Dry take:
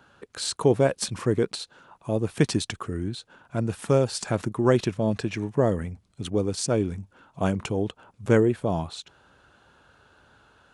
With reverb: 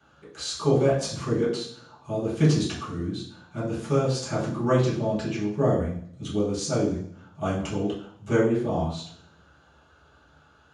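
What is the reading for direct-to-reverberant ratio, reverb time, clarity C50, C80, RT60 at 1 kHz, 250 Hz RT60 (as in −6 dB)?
−10.0 dB, 0.60 s, 4.5 dB, 8.0 dB, 0.60 s, 0.75 s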